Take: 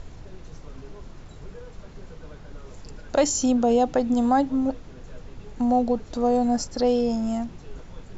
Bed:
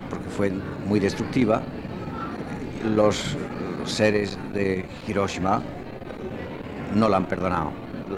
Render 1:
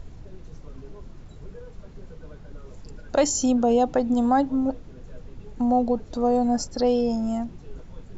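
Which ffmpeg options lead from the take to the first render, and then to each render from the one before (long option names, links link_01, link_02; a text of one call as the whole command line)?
ffmpeg -i in.wav -af "afftdn=noise_reduction=6:noise_floor=-44" out.wav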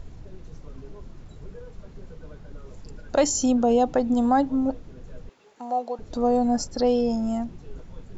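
ffmpeg -i in.wav -filter_complex "[0:a]asettb=1/sr,asplit=3[link_01][link_02][link_03];[link_01]atrim=end=5.294[link_04];[link_02]atrim=start=5.29:end=5.99,asetpts=PTS-STARTPTS,afade=type=in:duration=0.004:curve=qsin,afade=type=out:start_time=0.696:duration=0.004:curve=qsin,highpass=660[link_05];[link_03]atrim=start=5.986[link_06];[link_04][link_05]acrossfade=duration=0.004:curve1=hsin:curve2=qsin[link_07];[link_07][link_06]acrossfade=duration=0.004:curve1=qsin:curve2=hsin" out.wav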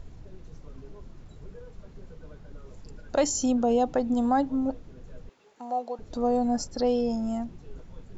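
ffmpeg -i in.wav -af "volume=-3.5dB" out.wav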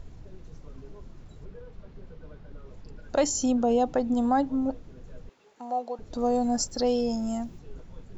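ffmpeg -i in.wav -filter_complex "[0:a]asettb=1/sr,asplit=3[link_01][link_02][link_03];[link_01]atrim=end=1.454[link_04];[link_02]atrim=start=1.45:end=3.02,asetpts=PTS-STARTPTS,afade=type=in:duration=0.004:curve=qsin,afade=type=out:start_time=1.566:duration=0.004:curve=qsin,lowpass=4700[link_05];[link_03]atrim=start=3.016[link_06];[link_04][link_05]acrossfade=duration=0.004:curve1=hsin:curve2=qsin[link_07];[link_07][link_06]acrossfade=duration=0.004:curve1=qsin:curve2=hsin,asettb=1/sr,asplit=3[link_08][link_09][link_10];[link_08]atrim=end=6.184[link_11];[link_09]atrim=start=6.18:end=7.59,asetpts=PTS-STARTPTS,afade=type=in:duration=0.004:curve=qsin,afade=type=out:start_time=1.406:duration=0.004:curve=qsin,aemphasis=mode=production:type=50fm[link_12];[link_10]atrim=start=7.586[link_13];[link_11][link_12]acrossfade=duration=0.004:curve1=hsin:curve2=qsin[link_14];[link_14][link_13]acrossfade=duration=0.004:curve1=qsin:curve2=hsin" out.wav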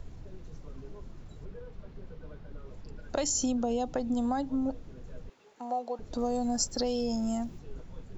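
ffmpeg -i in.wav -filter_complex "[0:a]acrossover=split=150|3000[link_01][link_02][link_03];[link_02]acompressor=threshold=-28dB:ratio=6[link_04];[link_01][link_04][link_03]amix=inputs=3:normalize=0" out.wav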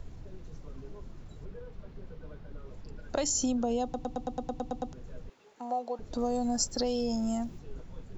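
ffmpeg -i in.wav -filter_complex "[0:a]asplit=11[link_01][link_02][link_03][link_04][link_05][link_06][link_07][link_08][link_09][link_10][link_11];[link_01]atrim=end=3.942[link_12];[link_02]atrim=start=3.828:end=3.942[link_13];[link_03]atrim=start=3.828:end=3.942[link_14];[link_04]atrim=start=3.828:end=3.942[link_15];[link_05]atrim=start=3.828:end=3.942[link_16];[link_06]atrim=start=3.828:end=3.942[link_17];[link_07]atrim=start=3.828:end=3.942[link_18];[link_08]atrim=start=3.828:end=3.942[link_19];[link_09]atrim=start=3.828:end=3.942[link_20];[link_10]atrim=start=3.828:end=3.942[link_21];[link_11]atrim=start=4.928[link_22];[link_12][link_13]acrossfade=duration=0.004:curve1=hsin:curve2=hsin[link_23];[link_23][link_14]acrossfade=duration=0.004:curve1=hsin:curve2=hsin[link_24];[link_24][link_15]acrossfade=duration=0.004:curve1=hsin:curve2=hsin[link_25];[link_25][link_16]acrossfade=duration=0.004:curve1=hsin:curve2=hsin[link_26];[link_26][link_17]acrossfade=duration=0.004:curve1=hsin:curve2=hsin[link_27];[link_27][link_18]acrossfade=duration=0.004:curve1=hsin:curve2=hsin[link_28];[link_28][link_19]acrossfade=duration=0.004:curve1=hsin:curve2=hsin[link_29];[link_29][link_20]acrossfade=duration=0.004:curve1=hsin:curve2=hsin[link_30];[link_30][link_21]acrossfade=duration=0.004:curve1=hsin:curve2=hsin[link_31];[link_31][link_22]acrossfade=duration=0.004:curve1=hsin:curve2=hsin" out.wav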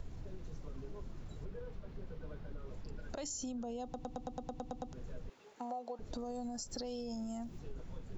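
ffmpeg -i in.wav -af "alimiter=level_in=1.5dB:limit=-24dB:level=0:latency=1:release=93,volume=-1.5dB,acompressor=threshold=-39dB:ratio=6" out.wav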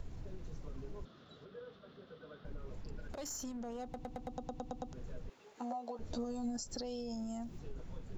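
ffmpeg -i in.wav -filter_complex "[0:a]asettb=1/sr,asplit=3[link_01][link_02][link_03];[link_01]atrim=end=1.054[link_04];[link_02]atrim=start=1.05:end=2.45,asetpts=PTS-STARTPTS,afade=type=in:duration=0.004:curve=qsin,afade=type=out:start_time=1.396:duration=0.004:curve=qsin,highpass=250,equalizer=frequency=340:width_type=q:width=4:gain=-5,equalizer=frequency=900:width_type=q:width=4:gain=-8,equalizer=frequency=1300:width_type=q:width=4:gain=7,equalizer=frequency=2300:width_type=q:width=4:gain=-7,equalizer=frequency=3500:width_type=q:width=4:gain=10,lowpass=frequency=5100:width=0.5412,lowpass=frequency=5100:width=1.3066[link_05];[link_03]atrim=start=2.446[link_06];[link_04][link_05]acrossfade=duration=0.004:curve1=hsin:curve2=qsin[link_07];[link_07][link_06]acrossfade=duration=0.004:curve1=qsin:curve2=hsin,asettb=1/sr,asplit=3[link_08][link_09][link_10];[link_08]atrim=end=3.074[link_11];[link_09]atrim=start=3.07:end=4.28,asetpts=PTS-STARTPTS,afade=type=in:duration=0.004:curve=qsin,afade=type=out:start_time=1.206:duration=0.004:curve=qsin,aeval=exprs='clip(val(0),-1,0.0075)':channel_layout=same[link_12];[link_10]atrim=start=4.276[link_13];[link_11][link_12]acrossfade=duration=0.004:curve1=hsin:curve2=qsin[link_14];[link_14][link_13]acrossfade=duration=0.004:curve1=qsin:curve2=hsin,asettb=1/sr,asplit=3[link_15][link_16][link_17];[link_15]atrim=end=5.544[link_18];[link_16]atrim=start=5.54:end=6.57,asetpts=PTS-STARTPTS,afade=type=in:duration=0.004:curve=qsin,afade=type=out:start_time=1.026:duration=0.004:curve=qsin,asplit=2[link_19][link_20];[link_20]adelay=13,volume=-2.5dB[link_21];[link_19][link_21]amix=inputs=2:normalize=0,atrim=end_sample=45423[link_22];[link_17]atrim=start=6.566[link_23];[link_18][link_22]acrossfade=duration=0.004:curve1=hsin:curve2=qsin[link_24];[link_24][link_23]acrossfade=duration=0.004:curve1=qsin:curve2=hsin" out.wav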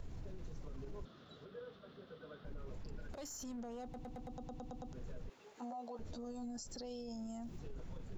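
ffmpeg -i in.wav -af "alimiter=level_in=15dB:limit=-24dB:level=0:latency=1:release=23,volume=-15dB" out.wav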